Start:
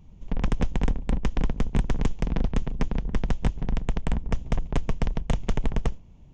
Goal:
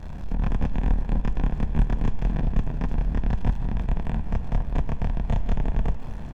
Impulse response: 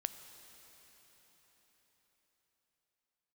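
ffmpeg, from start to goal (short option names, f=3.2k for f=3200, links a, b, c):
-filter_complex "[0:a]aeval=exprs='val(0)+0.5*0.0299*sgn(val(0))':c=same,lowpass=f=1.6k:p=1,aecho=1:1:1.2:0.34,asplit=2[a][b];[1:a]atrim=start_sample=2205,adelay=27[c];[b][c]afir=irnorm=-1:irlink=0,volume=3dB[d];[a][d]amix=inputs=2:normalize=0,volume=-5.5dB"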